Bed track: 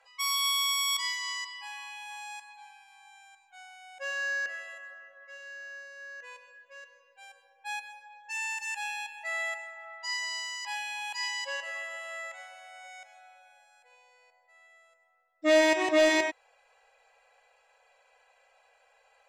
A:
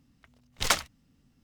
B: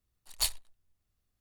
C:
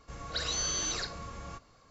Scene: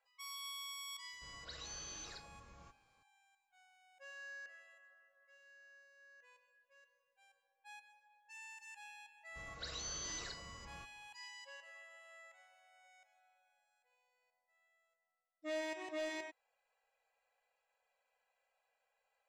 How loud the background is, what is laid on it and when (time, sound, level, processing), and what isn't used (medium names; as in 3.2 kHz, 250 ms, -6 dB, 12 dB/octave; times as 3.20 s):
bed track -19 dB
1.13 s: add C -16.5 dB
9.27 s: add C -12 dB, fades 0.10 s
not used: A, B